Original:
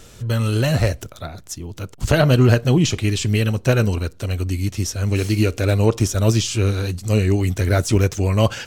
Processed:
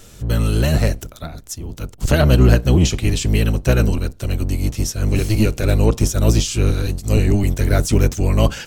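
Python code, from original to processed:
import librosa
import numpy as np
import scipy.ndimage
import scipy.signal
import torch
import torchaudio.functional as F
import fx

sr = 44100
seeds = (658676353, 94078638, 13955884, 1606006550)

y = fx.octave_divider(x, sr, octaves=1, level_db=2.0)
y = fx.high_shelf(y, sr, hz=8700.0, db=7.0)
y = y * librosa.db_to_amplitude(-1.0)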